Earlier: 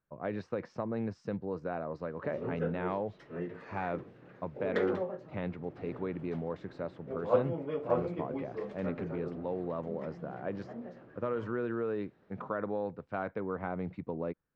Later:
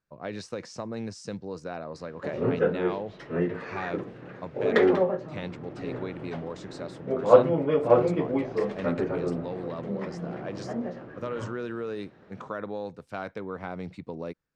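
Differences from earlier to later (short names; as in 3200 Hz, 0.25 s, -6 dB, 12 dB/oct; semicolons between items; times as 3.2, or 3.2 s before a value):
speech: remove LPF 1800 Hz 12 dB/oct; background +11.5 dB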